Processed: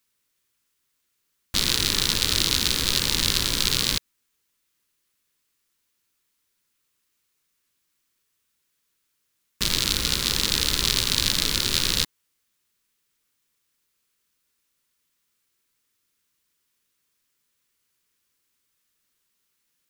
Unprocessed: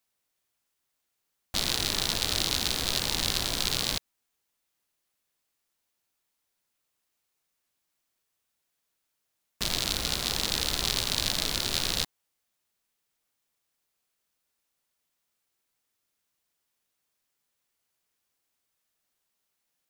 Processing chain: bell 710 Hz -14.5 dB 0.52 oct; gain +6 dB

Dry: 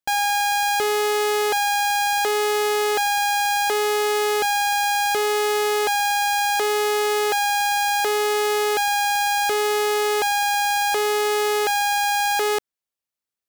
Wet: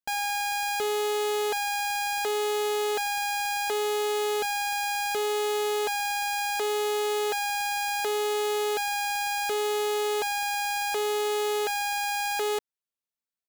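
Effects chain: comb 4.5 ms, depth 35%; gain -7.5 dB

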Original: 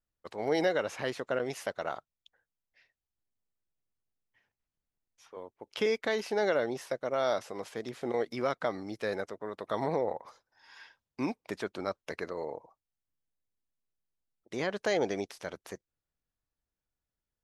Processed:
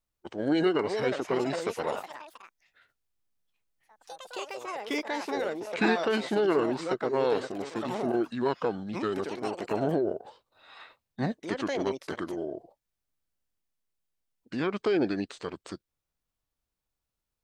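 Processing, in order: echoes that change speed 0.551 s, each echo +5 st, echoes 3, each echo -6 dB; formant shift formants -5 st; gain +3.5 dB

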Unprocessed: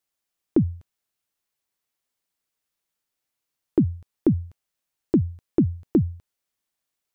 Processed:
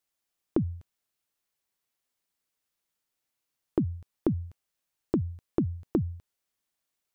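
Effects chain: compressor, threshold -22 dBFS, peak gain reduction 8 dB; gain -1 dB

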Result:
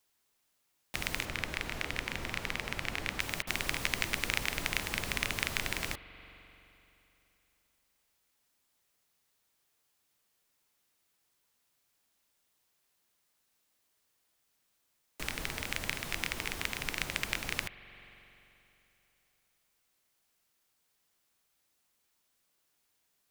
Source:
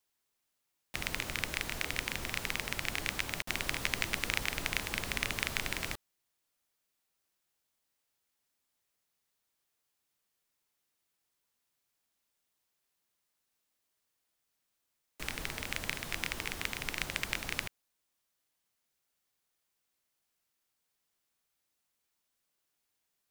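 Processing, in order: 1.25–3.2 high shelf 5000 Hz -10 dB; spring tank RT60 3 s, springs 43 ms, chirp 35 ms, DRR 15 dB; in parallel at -1 dB: compressor, threshold -50 dBFS, peak gain reduction 22.5 dB

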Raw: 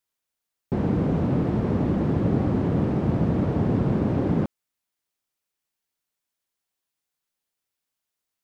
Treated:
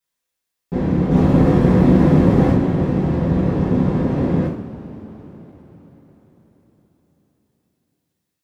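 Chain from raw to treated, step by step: 1.11–2.52 sample leveller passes 2; two-slope reverb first 0.46 s, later 4.8 s, from -20 dB, DRR -7.5 dB; gain -3.5 dB

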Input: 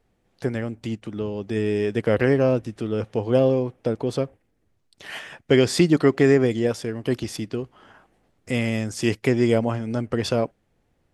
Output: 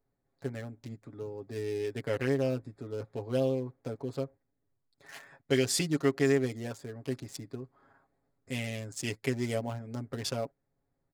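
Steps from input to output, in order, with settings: Wiener smoothing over 15 samples; pre-emphasis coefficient 0.8; comb 7.3 ms, depth 72%

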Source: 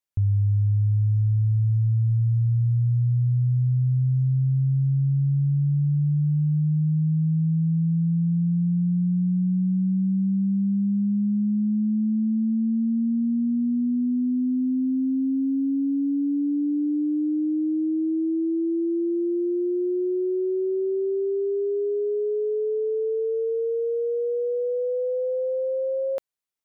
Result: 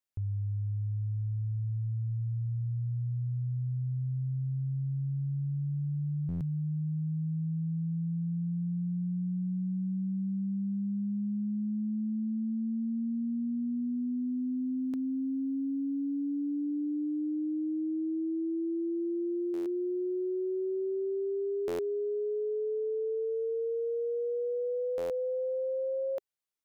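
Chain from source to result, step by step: dynamic EQ 400 Hz, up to +4 dB, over -36 dBFS, Q 3.6; limiter -25.5 dBFS, peak gain reduction 8.5 dB; stuck buffer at 6.28/14.81/19.53/21.67/24.97, samples 512, times 10; gain -3.5 dB

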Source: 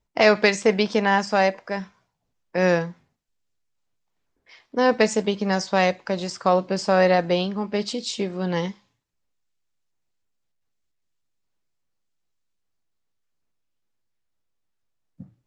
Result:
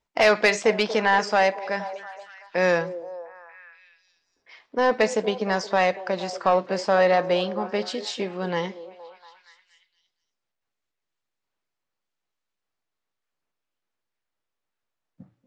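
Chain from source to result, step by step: overdrive pedal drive 13 dB, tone 4200 Hz, clips at -3 dBFS, from 2.81 s tone 2300 Hz; delay with a stepping band-pass 0.234 s, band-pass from 410 Hz, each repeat 0.7 oct, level -11 dB; gain -4 dB

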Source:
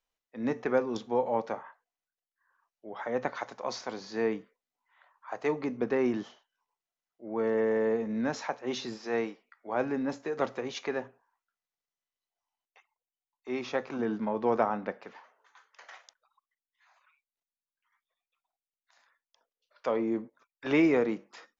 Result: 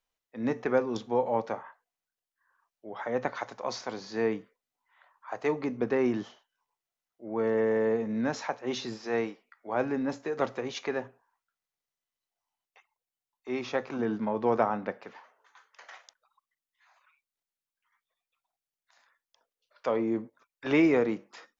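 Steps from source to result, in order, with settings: bell 110 Hz +5.5 dB 0.31 oct; gain +1 dB

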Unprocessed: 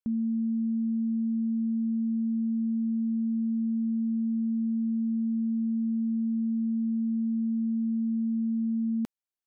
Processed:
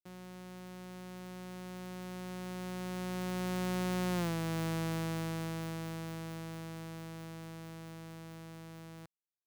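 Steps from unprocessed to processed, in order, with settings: sample sorter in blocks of 256 samples; Doppler pass-by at 4.23, 19 m/s, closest 1.6 m; compressor 16:1, threshold -45 dBFS, peak gain reduction 18 dB; HPF 110 Hz 6 dB/oct; gain +14 dB

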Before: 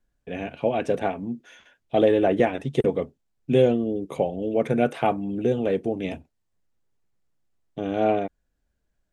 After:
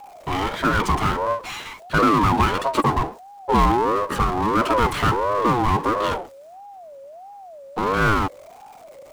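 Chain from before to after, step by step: power-law curve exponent 0.5; ring modulator with a swept carrier 680 Hz, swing 20%, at 1.5 Hz

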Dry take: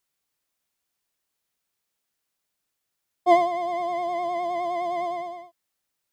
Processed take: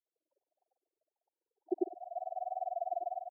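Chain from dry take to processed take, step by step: reverb RT60 0.35 s, pre-delay 3 ms, DRR -2.5 dB; upward compressor, threshold -21 dBFS; loudest bins only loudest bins 2; half-wave rectifier; Chebyshev band-pass 330–920 Hz, order 5; granular stretch 0.54×, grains 21 ms; compressor 6:1, threshold -35 dBFS, peak gain reduction 17 dB; bell 440 Hz +11.5 dB 1.8 oct; bands offset in time lows, highs 0.35 s, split 560 Hz; grains 47 ms, pitch spread up and down by 0 st

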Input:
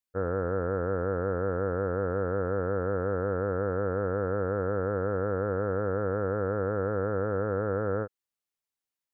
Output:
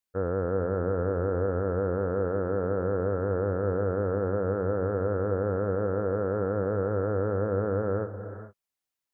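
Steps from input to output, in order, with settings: non-linear reverb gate 0.47 s rising, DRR 10 dB; dynamic EQ 1700 Hz, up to -5 dB, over -49 dBFS, Q 1.1; gain +1.5 dB

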